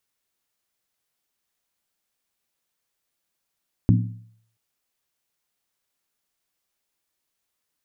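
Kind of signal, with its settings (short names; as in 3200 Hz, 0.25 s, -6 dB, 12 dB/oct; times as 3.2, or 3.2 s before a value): skin hit length 0.68 s, lowest mode 112 Hz, decay 0.62 s, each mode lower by 3.5 dB, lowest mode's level -12 dB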